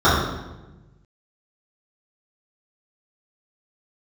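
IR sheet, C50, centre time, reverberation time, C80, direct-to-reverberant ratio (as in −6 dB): 0.5 dB, 69 ms, 1.1 s, 3.5 dB, −13.0 dB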